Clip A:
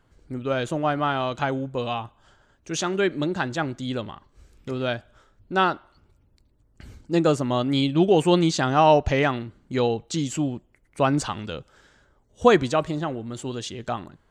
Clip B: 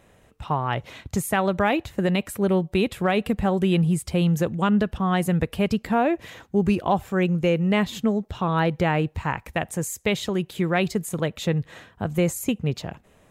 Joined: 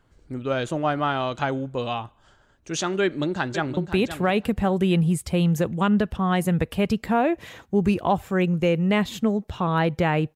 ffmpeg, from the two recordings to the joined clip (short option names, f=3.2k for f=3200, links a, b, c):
-filter_complex "[0:a]apad=whole_dur=10.35,atrim=end=10.35,atrim=end=3.772[a];[1:a]atrim=start=2.578:end=9.16[b];[a][b]acrossfade=d=0.004:c1=hsin:c2=hsin,asplit=2[c][d];[d]afade=t=in:st=3.02:d=0.01,afade=t=out:st=3.77:d=0.01,aecho=0:1:520|1040:0.316228|0.0474342[e];[c][e]amix=inputs=2:normalize=0"